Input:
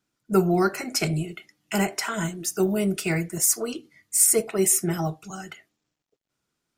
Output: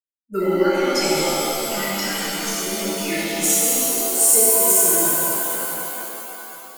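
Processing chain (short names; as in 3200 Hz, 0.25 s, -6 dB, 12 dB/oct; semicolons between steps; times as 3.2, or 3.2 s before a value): per-bin expansion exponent 1.5; fixed phaser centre 320 Hz, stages 4; spectral noise reduction 9 dB; shimmer reverb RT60 3.3 s, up +7 st, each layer -2 dB, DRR -9 dB; gain -1 dB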